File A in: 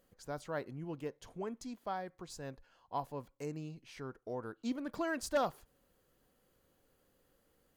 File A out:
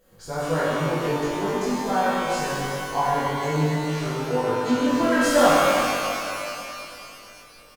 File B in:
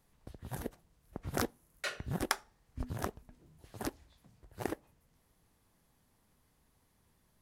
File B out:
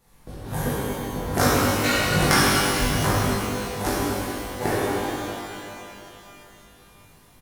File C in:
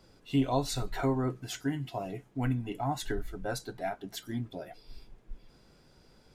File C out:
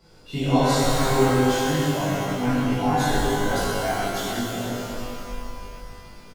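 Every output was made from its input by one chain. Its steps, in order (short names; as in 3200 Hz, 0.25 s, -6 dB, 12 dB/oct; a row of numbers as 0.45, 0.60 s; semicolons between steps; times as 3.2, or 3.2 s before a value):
doubler 20 ms -3 dB; shimmer reverb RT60 2.9 s, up +12 st, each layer -8 dB, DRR -10.5 dB; match loudness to -23 LUFS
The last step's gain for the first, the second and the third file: +5.5, +5.5, -1.0 dB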